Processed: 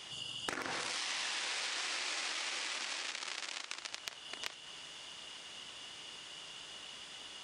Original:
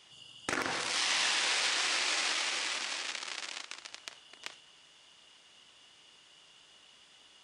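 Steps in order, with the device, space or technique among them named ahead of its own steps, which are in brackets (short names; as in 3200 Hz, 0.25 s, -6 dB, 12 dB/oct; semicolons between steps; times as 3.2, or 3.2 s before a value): serial compression, leveller first (compressor 2.5:1, threshold -34 dBFS, peak gain reduction 5.5 dB; compressor 4:1, threshold -48 dBFS, peak gain reduction 14 dB); gain +10 dB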